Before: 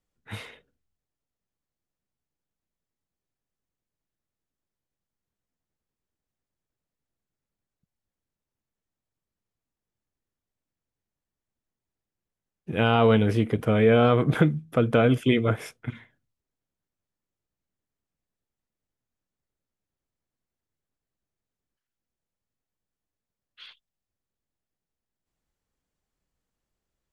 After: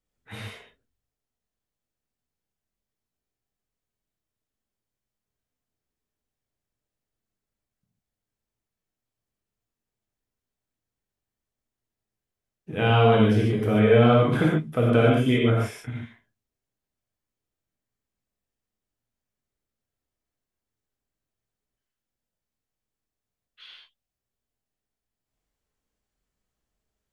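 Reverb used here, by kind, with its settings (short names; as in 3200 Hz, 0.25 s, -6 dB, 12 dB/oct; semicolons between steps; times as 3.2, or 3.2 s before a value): non-linear reverb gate 0.17 s flat, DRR -3.5 dB; gain -4 dB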